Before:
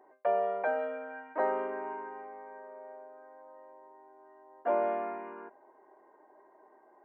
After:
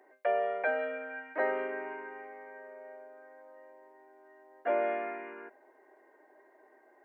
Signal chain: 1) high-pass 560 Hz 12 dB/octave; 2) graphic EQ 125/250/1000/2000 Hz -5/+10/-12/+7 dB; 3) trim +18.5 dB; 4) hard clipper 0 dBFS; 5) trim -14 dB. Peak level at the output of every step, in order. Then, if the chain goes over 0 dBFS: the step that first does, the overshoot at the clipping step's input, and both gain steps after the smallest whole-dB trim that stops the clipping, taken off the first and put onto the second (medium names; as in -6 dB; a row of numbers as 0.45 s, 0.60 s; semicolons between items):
-19.0 dBFS, -23.0 dBFS, -4.5 dBFS, -4.5 dBFS, -18.5 dBFS; nothing clips